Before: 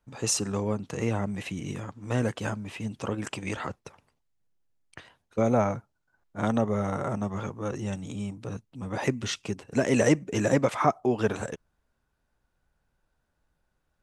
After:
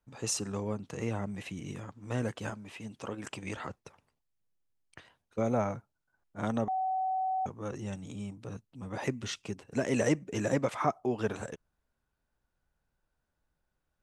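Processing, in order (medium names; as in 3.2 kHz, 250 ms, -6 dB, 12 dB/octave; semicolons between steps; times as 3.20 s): 2.50–3.24 s: bass shelf 160 Hz -8.5 dB; 6.68–7.46 s: bleep 755 Hz -22 dBFS; trim -6 dB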